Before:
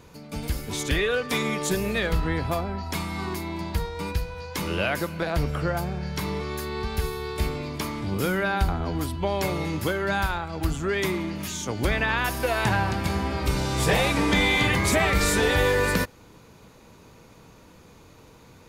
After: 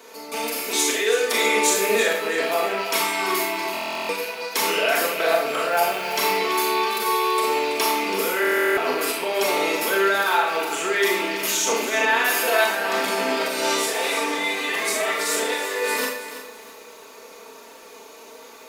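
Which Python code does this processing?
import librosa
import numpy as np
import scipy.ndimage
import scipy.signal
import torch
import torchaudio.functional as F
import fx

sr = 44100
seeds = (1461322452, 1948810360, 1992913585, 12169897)

y = fx.rattle_buzz(x, sr, strikes_db=-33.0, level_db=-28.0)
y = fx.over_compress(y, sr, threshold_db=-27.0, ratio=-1.0)
y = scipy.signal.sosfilt(scipy.signal.butter(4, 350.0, 'highpass', fs=sr, output='sos'), y)
y = y + 0.6 * np.pad(y, (int(4.5 * sr / 1000.0), 0))[:len(y)]
y = fx.rev_schroeder(y, sr, rt60_s=0.51, comb_ms=27, drr_db=-1.0)
y = fx.quant_dither(y, sr, seeds[0], bits=8, dither='none', at=(5.72, 6.37))
y = fx.high_shelf(y, sr, hz=8800.0, db=5.0)
y = fx.buffer_glitch(y, sr, at_s=(3.72, 8.4), block=1024, repeats=15)
y = fx.echo_crushed(y, sr, ms=330, feedback_pct=35, bits=8, wet_db=-11.5)
y = y * 10.0 ** (3.0 / 20.0)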